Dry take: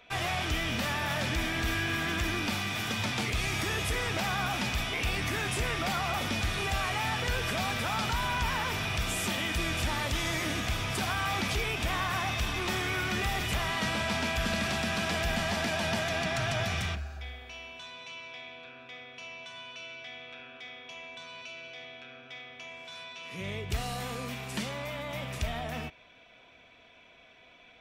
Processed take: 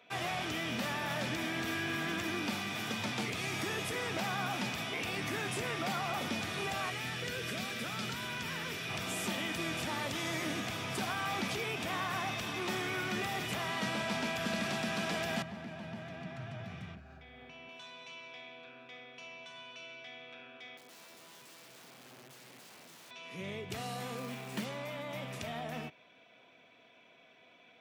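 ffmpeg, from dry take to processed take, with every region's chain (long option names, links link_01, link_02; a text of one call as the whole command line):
ffmpeg -i in.wav -filter_complex "[0:a]asettb=1/sr,asplit=3[link_01][link_02][link_03];[link_01]atrim=end=6.904[link_04];[link_02]atrim=start=6.9:end=8.89,asetpts=PTS-STARTPTS,afade=type=in:duration=0.004:curve=qsin,afade=type=out:start_time=1.986:duration=0.004:curve=qsin,equalizer=frequency=870:width_type=o:width=0.83:gain=-12,bandreject=frequency=50:width_type=h:width=6,bandreject=frequency=100:width_type=h:width=6,bandreject=frequency=150:width_type=h:width=6,bandreject=frequency=200:width_type=h:width=6,bandreject=frequency=250:width_type=h:width=6,bandreject=frequency=300:width_type=h:width=6,bandreject=frequency=350:width_type=h:width=6[link_05];[link_03]atrim=start=8.886[link_06];[link_04][link_05]acrossfade=duration=0.004:curve1=hsin:curve2=qsin[link_07];[link_07][link_06]acrossfade=duration=0.004:curve1=qsin:curve2=hsin,asettb=1/sr,asplit=3[link_08][link_09][link_10];[link_08]atrim=end=15.424[link_11];[link_09]atrim=start=15.42:end=17.69,asetpts=PTS-STARTPTS,afade=type=in:duration=0.004:curve=qsin,afade=type=out:start_time=2.266:duration=0.004:curve=qsin,acompressor=threshold=-41dB:ratio=4:attack=3.2:release=140:knee=1:detection=peak,bass=frequency=250:gain=10,treble=frequency=4000:gain=-11[link_12];[link_10]atrim=start=17.686[link_13];[link_11][link_12]acrossfade=duration=0.004:curve1=hsin:curve2=qsin[link_14];[link_14][link_13]acrossfade=duration=0.004:curve1=qsin:curve2=hsin,asettb=1/sr,asplit=3[link_15][link_16][link_17];[link_15]atrim=end=20.774[link_18];[link_16]atrim=start=20.77:end=23.11,asetpts=PTS-STARTPTS,afade=type=in:duration=0.004:curve=qsin,afade=type=out:start_time=2.336:duration=0.004:curve=qsin,lowpass=frequency=1500:poles=1,asubboost=boost=8.5:cutoff=250,aeval=exprs='(mod(178*val(0)+1,2)-1)/178':channel_layout=same[link_19];[link_17]atrim=start=23.106[link_20];[link_18][link_19]acrossfade=duration=0.004:curve1=hsin:curve2=qsin[link_21];[link_21][link_20]acrossfade=duration=0.004:curve1=qsin:curve2=hsin,asettb=1/sr,asplit=3[link_22][link_23][link_24];[link_22]atrim=end=24.174[link_25];[link_23]atrim=start=24.17:end=24.65,asetpts=PTS-STARTPTS,afade=type=in:duration=0.004:curve=qsin,afade=type=out:start_time=0.476:duration=0.004:curve=qsin,highpass=60,highshelf=frequency=6000:gain=-10,acrusher=bits=2:mode=log:mix=0:aa=0.000001[link_26];[link_24]atrim=start=24.646[link_27];[link_25][link_26]acrossfade=duration=0.004:curve1=hsin:curve2=qsin[link_28];[link_28][link_27]acrossfade=duration=0.004:curve1=qsin:curve2=hsin,highpass=frequency=120:width=0.5412,highpass=frequency=120:width=1.3066,equalizer=frequency=340:width=0.49:gain=3.5,volume=-5.5dB" out.wav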